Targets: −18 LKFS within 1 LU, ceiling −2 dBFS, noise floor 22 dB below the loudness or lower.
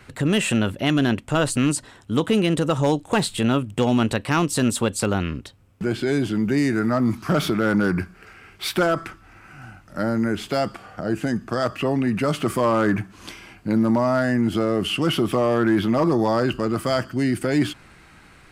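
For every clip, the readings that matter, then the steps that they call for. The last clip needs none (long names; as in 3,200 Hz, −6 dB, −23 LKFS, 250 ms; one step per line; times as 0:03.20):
share of clipped samples 0.4%; peaks flattened at −11.5 dBFS; integrated loudness −22.0 LKFS; sample peak −11.5 dBFS; target loudness −18.0 LKFS
→ clipped peaks rebuilt −11.5 dBFS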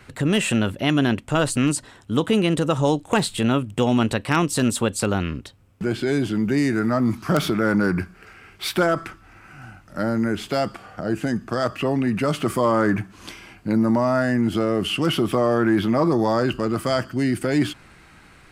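share of clipped samples 0.0%; integrated loudness −22.0 LKFS; sample peak −2.5 dBFS; target loudness −18.0 LKFS
→ level +4 dB
brickwall limiter −2 dBFS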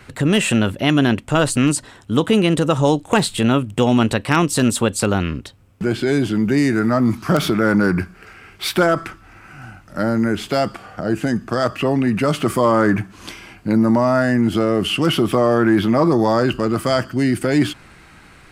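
integrated loudness −18.0 LKFS; sample peak −2.0 dBFS; background noise floor −46 dBFS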